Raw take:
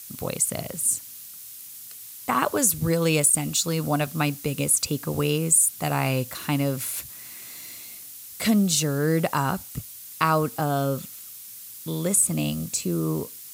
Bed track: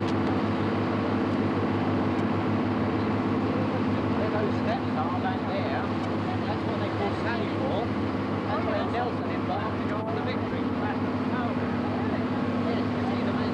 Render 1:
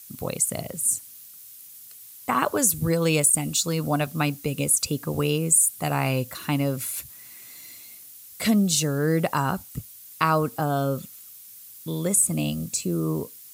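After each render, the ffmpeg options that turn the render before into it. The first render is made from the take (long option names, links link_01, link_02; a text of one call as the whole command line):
ffmpeg -i in.wav -af "afftdn=noise_reduction=6:noise_floor=-42" out.wav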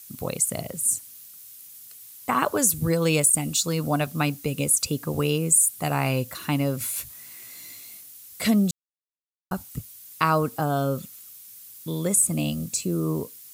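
ffmpeg -i in.wav -filter_complex "[0:a]asettb=1/sr,asplit=3[link_01][link_02][link_03];[link_01]atrim=end=6.794[link_04];[link_02]atrim=start=6.79:end=8.01,asetpts=PTS-STARTPTS,afade=type=in:duration=0.004:curve=qsin,afade=type=out:start_time=1.216:duration=0.004:curve=qsin,asplit=2[link_05][link_06];[link_06]adelay=19,volume=-4dB[link_07];[link_05][link_07]amix=inputs=2:normalize=0,atrim=end_sample=53802[link_08];[link_03]atrim=start=8.006[link_09];[link_04][link_08]acrossfade=duration=0.004:curve1=hsin:curve2=qsin[link_10];[link_10][link_09]acrossfade=duration=0.004:curve1=qsin:curve2=hsin,asplit=3[link_11][link_12][link_13];[link_11]atrim=end=8.71,asetpts=PTS-STARTPTS,afade=type=out:start_time=8.706:duration=0.004:curve=hsin[link_14];[link_12]atrim=start=8.71:end=9.51,asetpts=PTS-STARTPTS,volume=0[link_15];[link_13]atrim=start=9.51,asetpts=PTS-STARTPTS,afade=type=in:duration=0.004:curve=hsin[link_16];[link_14][link_15][link_16]concat=n=3:v=0:a=1" out.wav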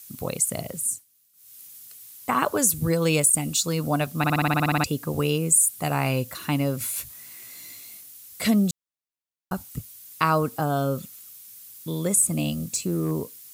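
ffmpeg -i in.wav -filter_complex "[0:a]asettb=1/sr,asplit=3[link_01][link_02][link_03];[link_01]atrim=end=12.454[link_04];[link_02]atrim=start=12.45:end=13.11,asetpts=PTS-STARTPTS,afade=type=in:duration=0.004:curve=qsin,afade=type=out:start_time=0.656:duration=0.004:curve=qsin,asoftclip=type=hard:threshold=-18.5dB[link_05];[link_03]atrim=start=13.106[link_06];[link_04][link_05]acrossfade=duration=0.004:curve1=hsin:curve2=qsin[link_07];[link_07][link_06]acrossfade=duration=0.004:curve1=qsin:curve2=hsin,asplit=14[link_08][link_09][link_10][link_11][link_12][link_13][link_14][link_15][link_16][link_17][link_18][link_19][link_20][link_21];[link_08]atrim=end=1.05,asetpts=PTS-STARTPTS,afade=type=out:start_time=0.78:duration=0.27:silence=0.125893[link_22];[link_09]atrim=start=1.05:end=1.33,asetpts=PTS-STARTPTS,volume=-18dB[link_23];[link_10]atrim=start=1.33:end=4.242,asetpts=PTS-STARTPTS,afade=type=in:duration=0.27:silence=0.125893[link_24];[link_11]atrim=start=4.178:end=4.242[link_25];[link_12]atrim=start=4.178:end=4.242[link_26];[link_13]atrim=start=4.178:end=4.242[link_27];[link_14]atrim=start=4.178:end=4.242[link_28];[link_15]atrim=start=4.178:end=4.242[link_29];[link_16]atrim=start=4.178:end=4.242[link_30];[link_17]atrim=start=4.178:end=4.242[link_31];[link_18]atrim=start=4.178:end=4.242[link_32];[link_19]atrim=start=4.178:end=4.242[link_33];[link_20]atrim=start=4.178:end=4.242[link_34];[link_21]atrim=start=4.838[link_35];[link_22][link_23][link_24]concat=n=3:v=0:a=1[link_36];[link_36][link_25]acrossfade=duration=0.004:curve1=hsin:curve2=hsin[link_37];[link_37][link_26]acrossfade=duration=0.004:curve1=hsin:curve2=hsin[link_38];[link_38][link_27]acrossfade=duration=0.004:curve1=hsin:curve2=hsin[link_39];[link_39][link_28]acrossfade=duration=0.004:curve1=hsin:curve2=hsin[link_40];[link_40][link_29]acrossfade=duration=0.004:curve1=hsin:curve2=hsin[link_41];[link_41][link_30]acrossfade=duration=0.004:curve1=hsin:curve2=hsin[link_42];[link_42][link_31]acrossfade=duration=0.004:curve1=hsin:curve2=hsin[link_43];[link_43][link_32]acrossfade=duration=0.004:curve1=hsin:curve2=hsin[link_44];[link_44][link_33]acrossfade=duration=0.004:curve1=hsin:curve2=hsin[link_45];[link_45][link_34]acrossfade=duration=0.004:curve1=hsin:curve2=hsin[link_46];[link_46][link_35]acrossfade=duration=0.004:curve1=hsin:curve2=hsin" out.wav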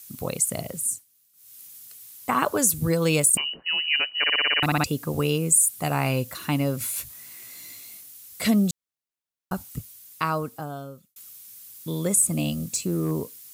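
ffmpeg -i in.wav -filter_complex "[0:a]asettb=1/sr,asplit=3[link_01][link_02][link_03];[link_01]atrim=end=3.374[link_04];[link_02]atrim=start=3.37:end=4.63,asetpts=PTS-STARTPTS,afade=type=in:duration=0.004:curve=qsin,afade=type=out:start_time=1.256:duration=0.004:curve=qsin,lowpass=frequency=2600:width_type=q:width=0.5098,lowpass=frequency=2600:width_type=q:width=0.6013,lowpass=frequency=2600:width_type=q:width=0.9,lowpass=frequency=2600:width_type=q:width=2.563,afreqshift=-3100[link_05];[link_03]atrim=start=4.626[link_06];[link_04][link_05]acrossfade=duration=0.004:curve1=hsin:curve2=qsin[link_07];[link_07][link_06]acrossfade=duration=0.004:curve1=qsin:curve2=hsin,asplit=2[link_08][link_09];[link_08]atrim=end=11.16,asetpts=PTS-STARTPTS,afade=type=out:start_time=9.71:duration=1.45[link_10];[link_09]atrim=start=11.16,asetpts=PTS-STARTPTS,afade=type=in:duration=0.004:curve=hsin[link_11];[link_10][link_11]concat=n=2:v=0:a=1" out.wav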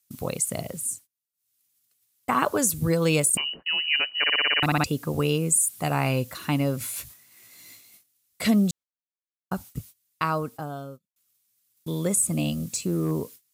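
ffmpeg -i in.wav -af "agate=range=-22dB:threshold=-41dB:ratio=16:detection=peak,highshelf=frequency=8100:gain=-5.5" out.wav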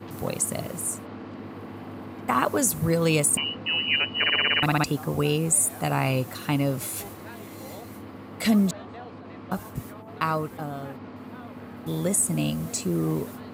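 ffmpeg -i in.wav -i bed.wav -filter_complex "[1:a]volume=-13dB[link_01];[0:a][link_01]amix=inputs=2:normalize=0" out.wav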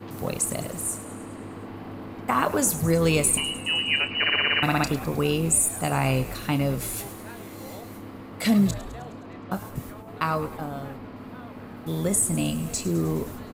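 ffmpeg -i in.wav -filter_complex "[0:a]asplit=2[link_01][link_02];[link_02]adelay=30,volume=-12.5dB[link_03];[link_01][link_03]amix=inputs=2:normalize=0,asplit=8[link_04][link_05][link_06][link_07][link_08][link_09][link_10][link_11];[link_05]adelay=104,afreqshift=-85,volume=-15dB[link_12];[link_06]adelay=208,afreqshift=-170,volume=-19dB[link_13];[link_07]adelay=312,afreqshift=-255,volume=-23dB[link_14];[link_08]adelay=416,afreqshift=-340,volume=-27dB[link_15];[link_09]adelay=520,afreqshift=-425,volume=-31.1dB[link_16];[link_10]adelay=624,afreqshift=-510,volume=-35.1dB[link_17];[link_11]adelay=728,afreqshift=-595,volume=-39.1dB[link_18];[link_04][link_12][link_13][link_14][link_15][link_16][link_17][link_18]amix=inputs=8:normalize=0" out.wav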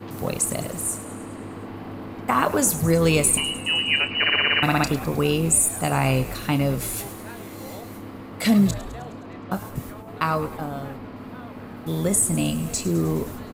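ffmpeg -i in.wav -af "volume=2.5dB" out.wav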